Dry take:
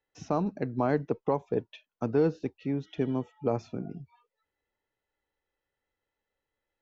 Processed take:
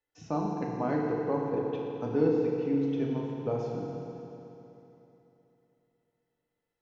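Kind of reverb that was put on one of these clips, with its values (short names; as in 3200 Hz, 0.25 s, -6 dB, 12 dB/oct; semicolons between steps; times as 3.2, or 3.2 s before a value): FDN reverb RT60 3.2 s, high-frequency decay 0.9×, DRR -2.5 dB; gain -6 dB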